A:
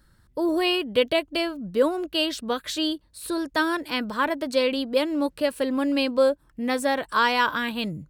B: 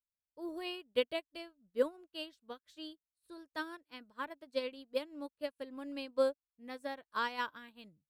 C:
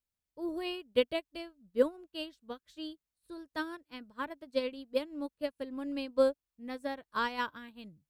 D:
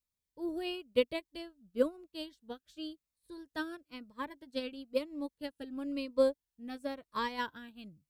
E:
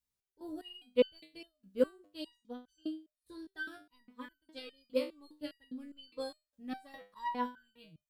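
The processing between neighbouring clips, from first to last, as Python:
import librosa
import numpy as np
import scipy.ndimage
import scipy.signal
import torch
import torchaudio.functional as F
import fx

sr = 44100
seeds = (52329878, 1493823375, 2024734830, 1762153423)

y1 = fx.upward_expand(x, sr, threshold_db=-43.0, expansion=2.5)
y1 = y1 * librosa.db_to_amplitude(-8.5)
y2 = fx.low_shelf(y1, sr, hz=250.0, db=10.5)
y2 = y2 * librosa.db_to_amplitude(2.0)
y3 = fx.notch_cascade(y2, sr, direction='falling', hz=0.99)
y4 = fx.resonator_held(y3, sr, hz=4.9, low_hz=64.0, high_hz=1500.0)
y4 = y4 * librosa.db_to_amplitude(8.0)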